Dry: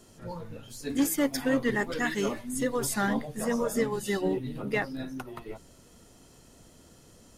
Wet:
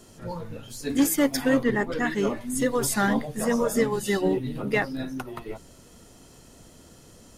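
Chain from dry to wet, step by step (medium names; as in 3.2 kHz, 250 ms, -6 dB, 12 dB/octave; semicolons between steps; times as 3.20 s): 1.63–2.41 s: treble shelf 2.5 kHz -9.5 dB; trim +4.5 dB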